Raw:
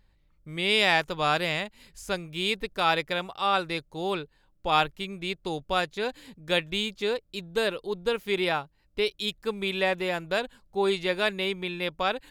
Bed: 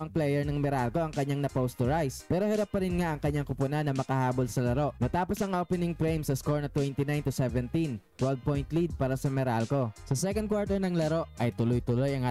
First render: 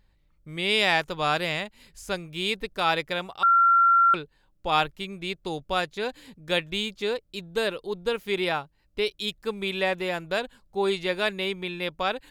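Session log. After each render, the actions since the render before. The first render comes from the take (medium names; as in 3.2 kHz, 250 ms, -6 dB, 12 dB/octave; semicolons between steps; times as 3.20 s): 3.43–4.14 s: bleep 1.37 kHz -15 dBFS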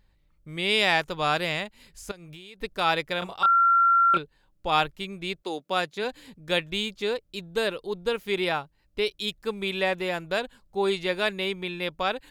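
2.11–2.60 s: compression 12:1, threshold -40 dBFS; 3.19–4.18 s: doubling 28 ms -2.5 dB; 5.41–6.03 s: high-pass 270 Hz -> 110 Hz 24 dB/octave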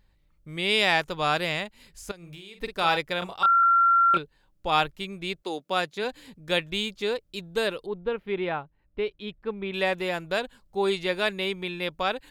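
2.17–2.97 s: doubling 47 ms -8 dB; 3.63–4.14 s: three bands compressed up and down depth 40%; 7.86–9.74 s: distance through air 500 m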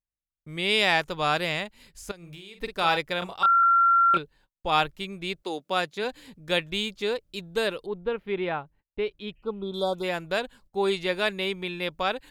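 9.39–10.01 s: spectral replace 1.5–3.2 kHz before; gate -55 dBFS, range -33 dB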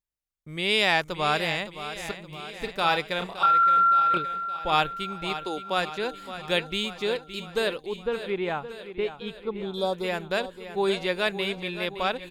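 feedback delay 567 ms, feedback 58%, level -12 dB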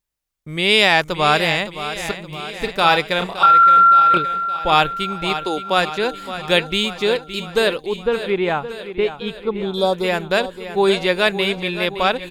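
trim +9 dB; peak limiter -2 dBFS, peak gain reduction 2.5 dB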